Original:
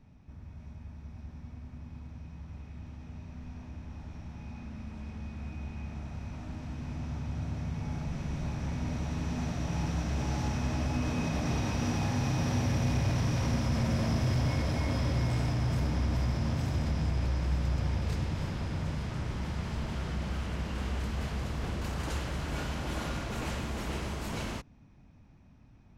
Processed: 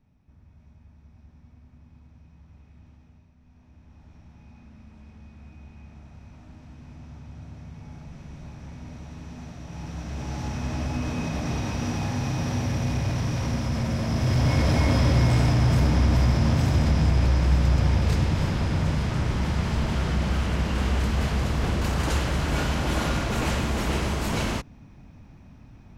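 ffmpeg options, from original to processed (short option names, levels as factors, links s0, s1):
-af "volume=7.5,afade=t=out:st=2.9:d=0.46:silence=0.398107,afade=t=in:st=3.36:d=0.77:silence=0.375837,afade=t=in:st=9.66:d=1.13:silence=0.354813,afade=t=in:st=14.07:d=0.64:silence=0.446684"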